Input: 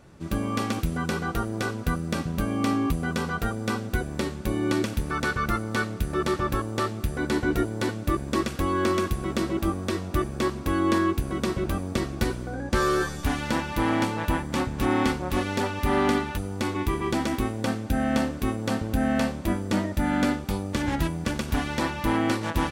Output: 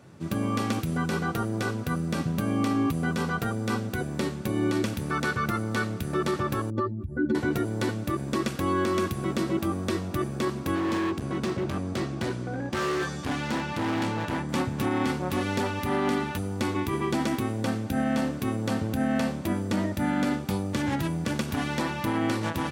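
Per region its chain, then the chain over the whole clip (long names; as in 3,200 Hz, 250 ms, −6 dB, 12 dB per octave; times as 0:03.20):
0:06.70–0:07.35: expanding power law on the bin magnitudes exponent 2.1 + comb filter 3.4 ms, depth 47% + dynamic equaliser 1,100 Hz, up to −6 dB, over −37 dBFS, Q 1.2
0:10.75–0:14.49: low-pass filter 7,500 Hz + gain into a clipping stage and back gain 25.5 dB
whole clip: brickwall limiter −18 dBFS; high-pass filter 100 Hz 24 dB per octave; low-shelf EQ 130 Hz +6.5 dB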